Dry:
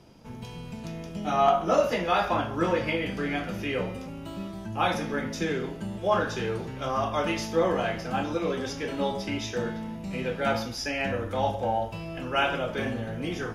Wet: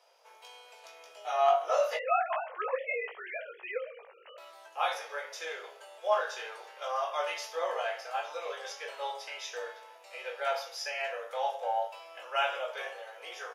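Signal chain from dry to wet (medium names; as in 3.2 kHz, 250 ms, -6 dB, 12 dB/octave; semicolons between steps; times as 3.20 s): 1.97–4.38 s: formants replaced by sine waves; steep high-pass 500 Hz 48 dB/octave; doubling 19 ms -5.5 dB; trim -5.5 dB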